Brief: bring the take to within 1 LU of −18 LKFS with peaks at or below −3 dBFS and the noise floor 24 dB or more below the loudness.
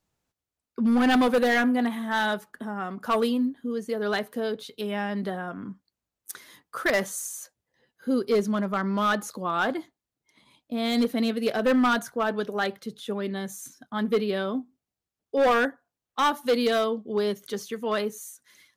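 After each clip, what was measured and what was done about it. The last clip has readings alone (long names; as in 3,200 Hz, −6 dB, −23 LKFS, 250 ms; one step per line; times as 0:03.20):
share of clipped samples 1.3%; peaks flattened at −17.0 dBFS; integrated loudness −26.5 LKFS; sample peak −17.0 dBFS; target loudness −18.0 LKFS
→ clipped peaks rebuilt −17 dBFS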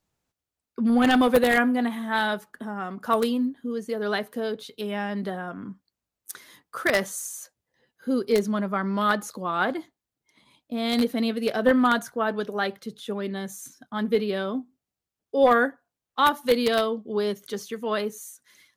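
share of clipped samples 0.0%; integrated loudness −25.0 LKFS; sample peak −8.0 dBFS; target loudness −18.0 LKFS
→ level +7 dB
brickwall limiter −3 dBFS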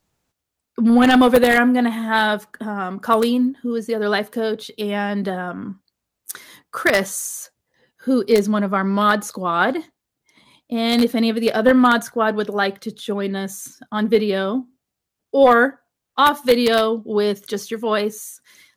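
integrated loudness −18.5 LKFS; sample peak −3.0 dBFS; background noise floor −81 dBFS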